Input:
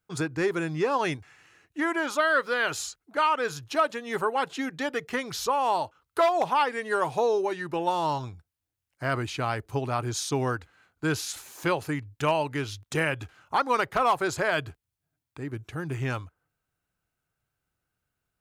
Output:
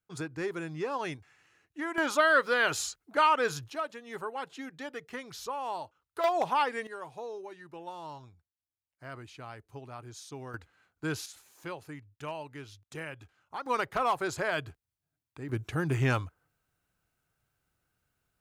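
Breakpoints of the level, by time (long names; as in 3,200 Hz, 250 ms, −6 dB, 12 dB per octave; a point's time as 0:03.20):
−8 dB
from 0:01.98 0 dB
from 0:03.70 −10.5 dB
from 0:06.24 −3.5 dB
from 0:06.87 −16 dB
from 0:10.54 −6.5 dB
from 0:11.26 −14 dB
from 0:13.66 −5 dB
from 0:15.49 +3 dB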